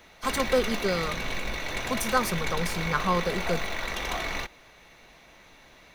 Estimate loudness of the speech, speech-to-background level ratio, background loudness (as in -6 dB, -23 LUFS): -29.0 LUFS, 2.5 dB, -31.5 LUFS